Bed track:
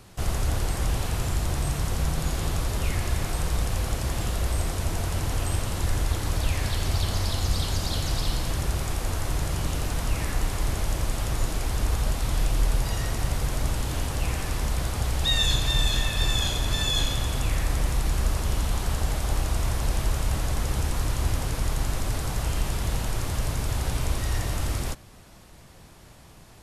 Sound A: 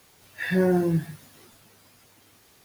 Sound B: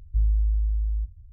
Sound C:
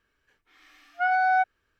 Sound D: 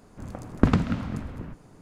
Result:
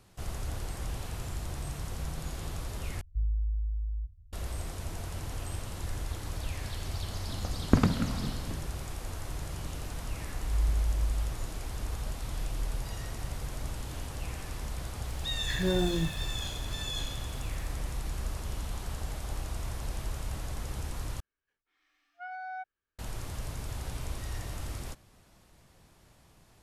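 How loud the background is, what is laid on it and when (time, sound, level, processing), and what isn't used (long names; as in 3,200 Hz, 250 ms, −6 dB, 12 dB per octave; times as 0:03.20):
bed track −10.5 dB
0:03.01: overwrite with B −8 dB
0:07.10: mix in D −3.5 dB
0:10.29: mix in B −5 dB + volume swells 178 ms
0:15.08: mix in A −7.5 dB
0:21.20: overwrite with C −18 dB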